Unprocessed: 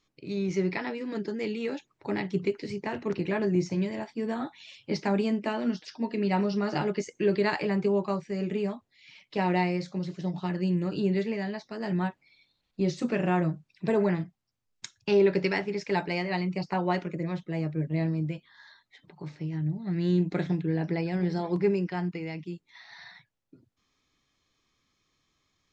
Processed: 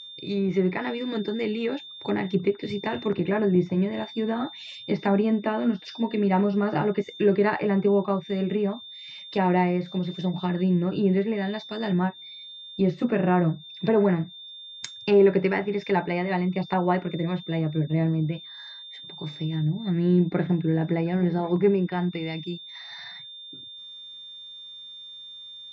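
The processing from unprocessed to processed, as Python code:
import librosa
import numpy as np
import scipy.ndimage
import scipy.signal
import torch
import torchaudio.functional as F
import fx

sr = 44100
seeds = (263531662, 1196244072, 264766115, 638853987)

y = x + 10.0 ** (-44.0 / 20.0) * np.sin(2.0 * np.pi * 3600.0 * np.arange(len(x)) / sr)
y = fx.env_lowpass_down(y, sr, base_hz=1900.0, full_db=-25.5)
y = F.gain(torch.from_numpy(y), 4.5).numpy()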